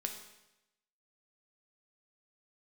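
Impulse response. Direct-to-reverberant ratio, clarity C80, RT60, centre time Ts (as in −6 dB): 3.5 dB, 9.5 dB, 0.90 s, 23 ms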